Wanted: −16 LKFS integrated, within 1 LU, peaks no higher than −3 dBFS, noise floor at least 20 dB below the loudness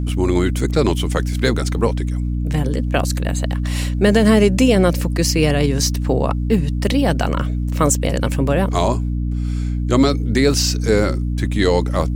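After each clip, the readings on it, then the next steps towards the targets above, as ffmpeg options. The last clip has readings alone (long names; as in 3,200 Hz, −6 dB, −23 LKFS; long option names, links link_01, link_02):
mains hum 60 Hz; hum harmonics up to 300 Hz; level of the hum −18 dBFS; integrated loudness −18.0 LKFS; sample peak −2.0 dBFS; target loudness −16.0 LKFS
→ -af "bandreject=frequency=60:width_type=h:width=6,bandreject=frequency=120:width_type=h:width=6,bandreject=frequency=180:width_type=h:width=6,bandreject=frequency=240:width_type=h:width=6,bandreject=frequency=300:width_type=h:width=6"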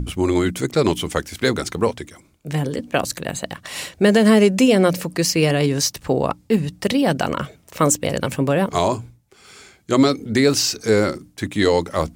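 mains hum none found; integrated loudness −19.5 LKFS; sample peak −4.0 dBFS; target loudness −16.0 LKFS
→ -af "volume=3.5dB,alimiter=limit=-3dB:level=0:latency=1"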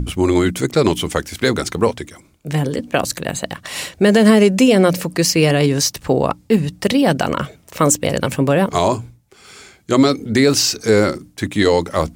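integrated loudness −16.5 LKFS; sample peak −3.0 dBFS; background noise floor −52 dBFS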